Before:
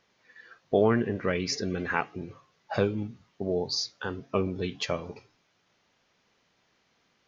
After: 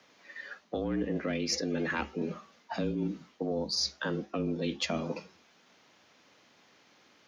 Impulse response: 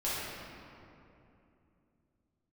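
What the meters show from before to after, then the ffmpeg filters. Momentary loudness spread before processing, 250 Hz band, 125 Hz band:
13 LU, -1.5 dB, -4.0 dB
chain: -filter_complex "[0:a]aeval=exprs='0.335*(cos(1*acos(clip(val(0)/0.335,-1,1)))-cos(1*PI/2))+0.0531*(cos(2*acos(clip(val(0)/0.335,-1,1)))-cos(2*PI/2))':c=same,acrossover=split=260|3000[s0][s1][s2];[s1]acompressor=threshold=0.0178:ratio=6[s3];[s0][s3][s2]amix=inputs=3:normalize=0,afreqshift=70,areverse,acompressor=threshold=0.0158:ratio=6,areverse,volume=2.37"

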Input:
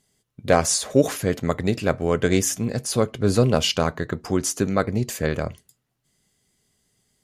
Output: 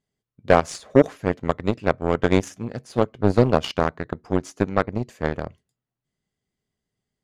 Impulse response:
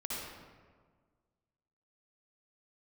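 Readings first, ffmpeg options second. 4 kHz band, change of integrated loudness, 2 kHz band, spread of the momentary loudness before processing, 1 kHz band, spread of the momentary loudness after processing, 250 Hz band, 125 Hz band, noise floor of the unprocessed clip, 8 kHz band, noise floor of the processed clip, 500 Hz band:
-8.0 dB, 0.0 dB, 0.0 dB, 7 LU, +2.5 dB, 9 LU, 0.0 dB, -1.5 dB, -75 dBFS, -16.0 dB, under -85 dBFS, +1.0 dB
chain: -af "aeval=exprs='0.708*(cos(1*acos(clip(val(0)/0.708,-1,1)))-cos(1*PI/2))+0.0794*(cos(7*acos(clip(val(0)/0.708,-1,1)))-cos(7*PI/2))':c=same,aemphasis=mode=reproduction:type=75fm,volume=1.26"

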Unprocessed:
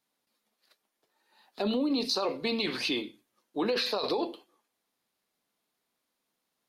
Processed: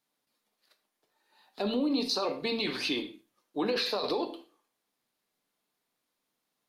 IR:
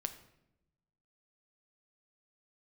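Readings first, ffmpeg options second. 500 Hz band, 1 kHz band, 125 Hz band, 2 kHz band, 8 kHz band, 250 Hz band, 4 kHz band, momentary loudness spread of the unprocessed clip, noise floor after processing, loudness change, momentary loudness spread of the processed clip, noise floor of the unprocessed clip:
-1.0 dB, -0.5 dB, -1.0 dB, -0.5 dB, -1.0 dB, -0.5 dB, -0.5 dB, 7 LU, -83 dBFS, -0.5 dB, 10 LU, -82 dBFS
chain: -filter_complex "[1:a]atrim=start_sample=2205,atrim=end_sample=6174[s0];[0:a][s0]afir=irnorm=-1:irlink=0"

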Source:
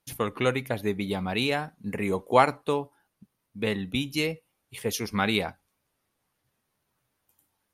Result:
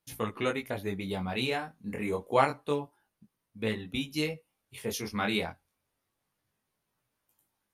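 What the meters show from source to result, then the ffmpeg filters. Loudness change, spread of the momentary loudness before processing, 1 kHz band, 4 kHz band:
-4.5 dB, 12 LU, -5.0 dB, -4.5 dB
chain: -af "flanger=delay=18:depth=5.7:speed=0.28,volume=0.841"

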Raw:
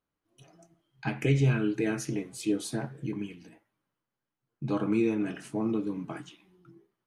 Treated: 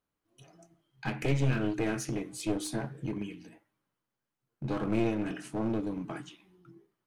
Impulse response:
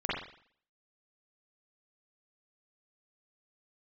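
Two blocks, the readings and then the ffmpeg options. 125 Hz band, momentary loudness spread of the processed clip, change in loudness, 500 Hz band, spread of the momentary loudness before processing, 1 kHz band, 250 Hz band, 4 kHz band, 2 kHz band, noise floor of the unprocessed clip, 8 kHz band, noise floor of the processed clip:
-3.0 dB, 12 LU, -3.0 dB, -2.5 dB, 14 LU, +0.5 dB, -3.0 dB, -0.5 dB, -1.5 dB, under -85 dBFS, -0.5 dB, under -85 dBFS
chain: -af "bandreject=f=153.3:t=h:w=4,bandreject=f=306.6:t=h:w=4,aeval=exprs='clip(val(0),-1,0.0237)':c=same"

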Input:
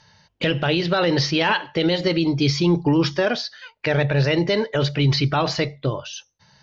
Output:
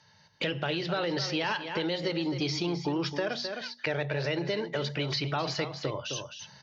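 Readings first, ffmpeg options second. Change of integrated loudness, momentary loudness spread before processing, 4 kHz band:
-10.5 dB, 8 LU, -8.5 dB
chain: -filter_complex "[0:a]acrossover=split=340[s0][s1];[s0]asoftclip=type=tanh:threshold=0.0668[s2];[s2][s1]amix=inputs=2:normalize=0,aecho=1:1:261:0.266,dynaudnorm=f=180:g=3:m=2.82,highpass=81,bandreject=f=60:t=h:w=6,bandreject=f=120:t=h:w=6,bandreject=f=180:t=h:w=6,bandreject=f=240:t=h:w=6,acompressor=threshold=0.0562:ratio=2.5,volume=0.447"

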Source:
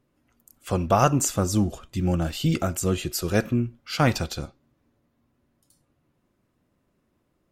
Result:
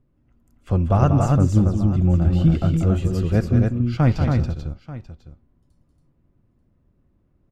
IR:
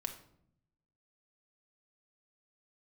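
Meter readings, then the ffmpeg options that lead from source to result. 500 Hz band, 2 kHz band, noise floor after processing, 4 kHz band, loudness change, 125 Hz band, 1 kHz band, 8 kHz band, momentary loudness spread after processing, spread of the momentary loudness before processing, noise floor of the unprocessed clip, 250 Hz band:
0.0 dB, -4.5 dB, -64 dBFS, no reading, +5.5 dB, +9.5 dB, -2.0 dB, under -10 dB, 12 LU, 9 LU, -72 dBFS, +5.5 dB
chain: -filter_complex "[0:a]aemphasis=mode=reproduction:type=riaa,asplit=2[s0][s1];[s1]aecho=0:1:188|250|279|887:0.422|0.112|0.631|0.141[s2];[s0][s2]amix=inputs=2:normalize=0,volume=0.596"

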